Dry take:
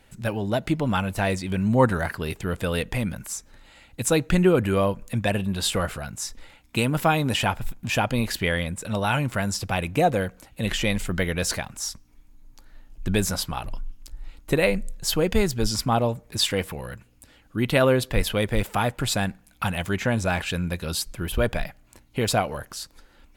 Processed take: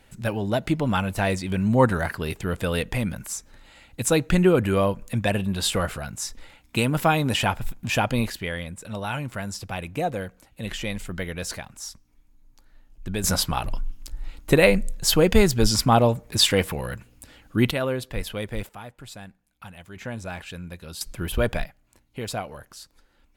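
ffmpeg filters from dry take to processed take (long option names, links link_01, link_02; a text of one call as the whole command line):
ffmpeg -i in.wav -af "asetnsamples=nb_out_samples=441:pad=0,asendcmd='8.3 volume volume -6dB;13.24 volume volume 4.5dB;17.71 volume volume -7dB;18.69 volume volume -16.5dB;19.96 volume volume -10dB;21.01 volume volume 0dB;21.65 volume volume -8dB',volume=0.5dB" out.wav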